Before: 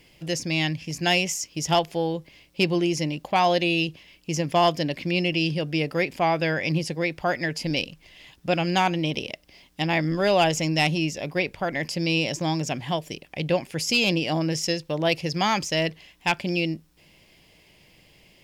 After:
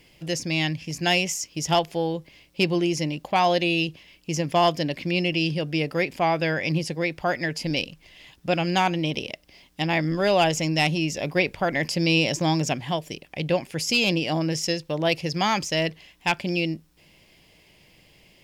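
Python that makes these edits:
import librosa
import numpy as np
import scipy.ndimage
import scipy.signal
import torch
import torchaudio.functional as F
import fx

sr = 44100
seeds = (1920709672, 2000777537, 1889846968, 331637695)

y = fx.edit(x, sr, fx.clip_gain(start_s=11.1, length_s=1.64, db=3.0), tone=tone)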